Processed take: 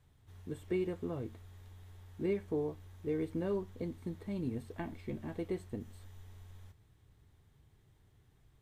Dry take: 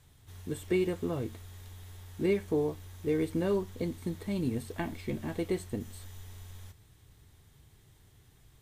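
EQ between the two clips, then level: high shelf 3000 Hz -10 dB; -5.5 dB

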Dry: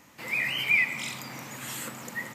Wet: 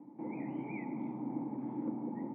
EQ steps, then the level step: vocal tract filter u; HPF 140 Hz 24 dB/oct; air absorption 180 m; +13.5 dB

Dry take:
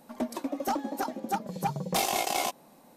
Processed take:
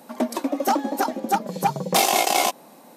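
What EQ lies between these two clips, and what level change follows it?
HPF 200 Hz 12 dB/oct; +9.0 dB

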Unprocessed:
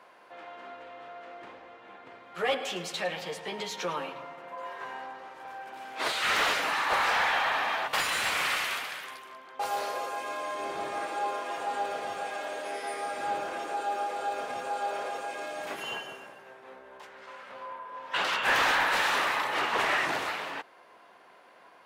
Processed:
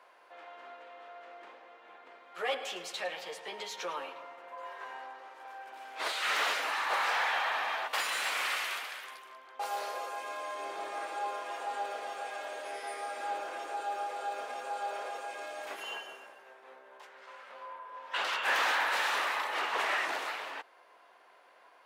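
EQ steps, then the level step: HPF 410 Hz 12 dB/oct; -4.0 dB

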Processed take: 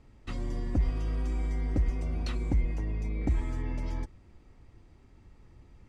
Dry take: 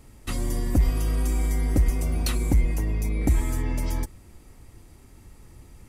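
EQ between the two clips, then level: air absorption 140 m; -6.5 dB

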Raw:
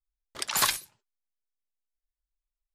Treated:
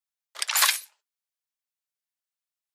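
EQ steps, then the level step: HPF 530 Hz 24 dB/oct; dynamic EQ 2100 Hz, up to +4 dB, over -43 dBFS, Q 1.4; tilt shelf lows -4 dB, about 860 Hz; 0.0 dB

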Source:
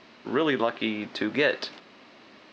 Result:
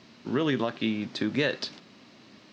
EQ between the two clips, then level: HPF 100 Hz; tone controls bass +15 dB, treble +11 dB; -5.5 dB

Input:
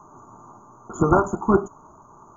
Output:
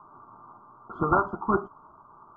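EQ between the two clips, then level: rippled Chebyshev low-pass 4900 Hz, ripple 9 dB; 0.0 dB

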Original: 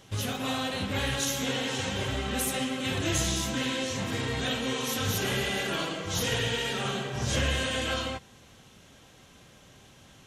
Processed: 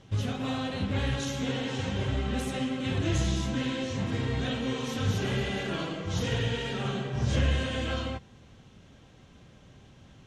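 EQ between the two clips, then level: air absorption 75 m; low shelf 340 Hz +9 dB; -4.0 dB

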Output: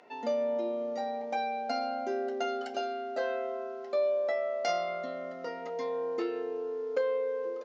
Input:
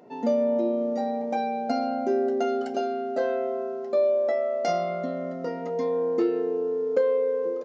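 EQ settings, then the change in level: dynamic EQ 2200 Hz, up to -6 dB, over -46 dBFS, Q 0.71; band-pass 2500 Hz, Q 0.97; +7.0 dB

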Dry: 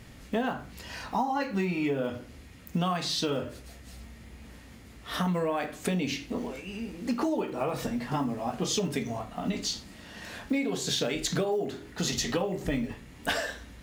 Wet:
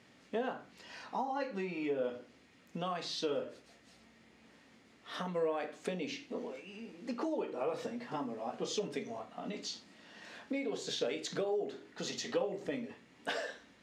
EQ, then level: dynamic EQ 490 Hz, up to +7 dB, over -45 dBFS, Q 2.7; HPF 230 Hz 12 dB/oct; LPF 6400 Hz 12 dB/oct; -8.5 dB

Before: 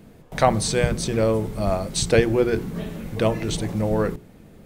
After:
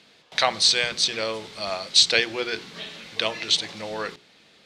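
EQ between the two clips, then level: HPF 1400 Hz 6 dB/oct; synth low-pass 4100 Hz, resonance Q 2; high shelf 2400 Hz +10.5 dB; 0.0 dB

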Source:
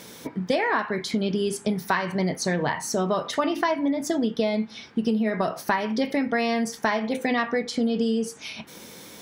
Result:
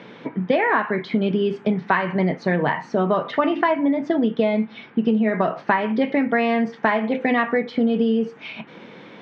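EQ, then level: HPF 120 Hz 24 dB/oct; LPF 2900 Hz 24 dB/oct; +4.5 dB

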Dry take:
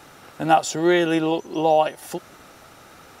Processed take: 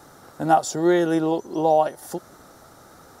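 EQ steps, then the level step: bell 2600 Hz -15 dB 0.78 oct; 0.0 dB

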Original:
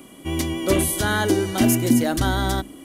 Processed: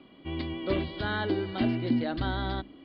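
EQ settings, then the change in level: steep low-pass 4600 Hz 96 dB/oct; -9.0 dB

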